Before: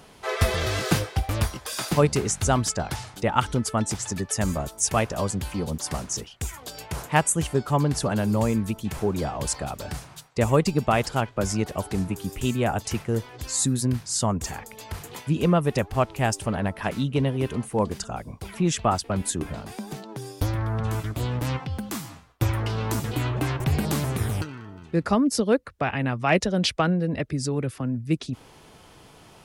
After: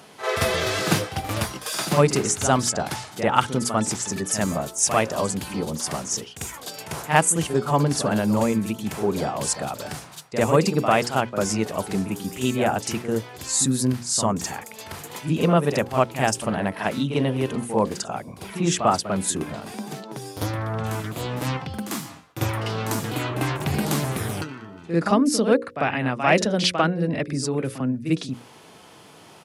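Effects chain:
high-pass filter 150 Hz 12 dB per octave
mains-hum notches 60/120/180/240/300/360/420/480/540 Hz
on a send: backwards echo 47 ms −9 dB
on the sum: downsampling to 32,000 Hz
level +3 dB

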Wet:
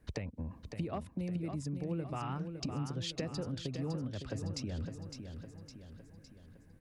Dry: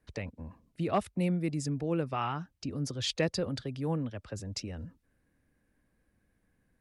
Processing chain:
low-shelf EQ 440 Hz +7 dB
downward compressor 10 to 1, threshold −39 dBFS, peak gain reduction 19.5 dB
repeating echo 559 ms, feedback 51%, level −7.5 dB
level +3.5 dB

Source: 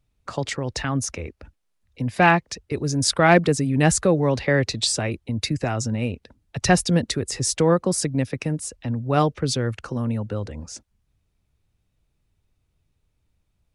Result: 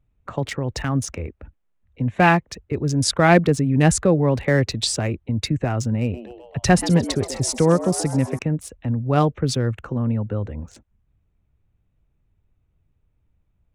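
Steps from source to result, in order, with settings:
adaptive Wiener filter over 9 samples
low-shelf EQ 250 Hz +4.5 dB
0:06.00–0:08.39: echo with shifted repeats 130 ms, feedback 60%, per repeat +120 Hz, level −14 dB

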